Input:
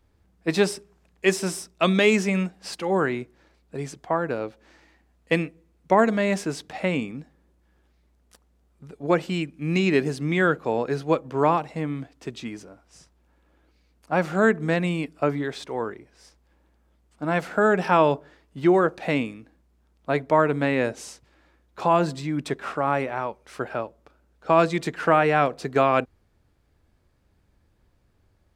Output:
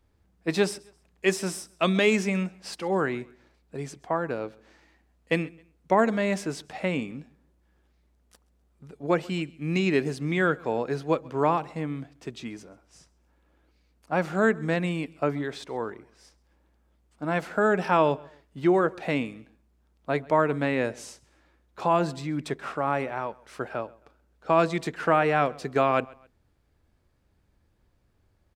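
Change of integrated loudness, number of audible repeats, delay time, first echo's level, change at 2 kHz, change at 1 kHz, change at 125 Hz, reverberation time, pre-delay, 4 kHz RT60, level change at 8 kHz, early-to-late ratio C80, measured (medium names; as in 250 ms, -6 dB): -3.0 dB, 2, 133 ms, -24.0 dB, -3.0 dB, -3.0 dB, -3.0 dB, no reverb, no reverb, no reverb, -3.0 dB, no reverb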